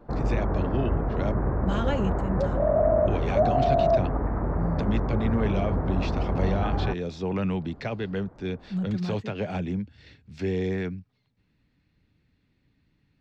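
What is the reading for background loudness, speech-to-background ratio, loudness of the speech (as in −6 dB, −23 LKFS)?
−26.5 LKFS, −4.5 dB, −31.0 LKFS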